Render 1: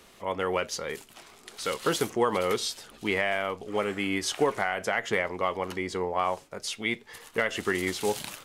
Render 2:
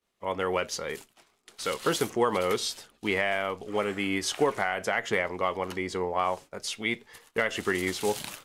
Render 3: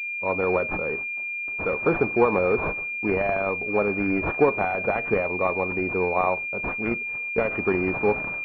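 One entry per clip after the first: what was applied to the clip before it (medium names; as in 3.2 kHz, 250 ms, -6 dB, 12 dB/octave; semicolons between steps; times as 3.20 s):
expander -40 dBFS
class-D stage that switches slowly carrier 2.4 kHz; trim +6 dB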